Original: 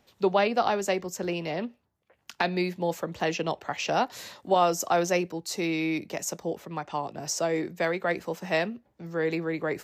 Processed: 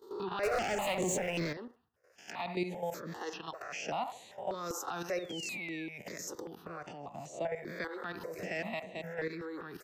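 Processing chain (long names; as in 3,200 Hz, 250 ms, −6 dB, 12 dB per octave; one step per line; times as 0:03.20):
peak hold with a rise ahead of every peak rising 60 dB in 0.41 s
high-pass filter 110 Hz 6 dB per octave
output level in coarse steps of 13 dB
0:06.93–0:07.56: parametric band 11,000 Hz −12 dB 1.8 octaves
0:08.13–0:08.57: delay throw 220 ms, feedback 40%, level −2.5 dB
delay with a band-pass on its return 68 ms, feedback 38%, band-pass 990 Hz, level −12.5 dB
brickwall limiter −24 dBFS, peak gain reduction 9.5 dB
0:00.43–0:01.53: leveller curve on the samples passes 3
0:03.14–0:03.87: low-shelf EQ 330 Hz −7.5 dB
0:05.17–0:05.87: sound drawn into the spectrogram fall 1,600–3,900 Hz −41 dBFS
step-sequenced phaser 5.1 Hz 650–5,200 Hz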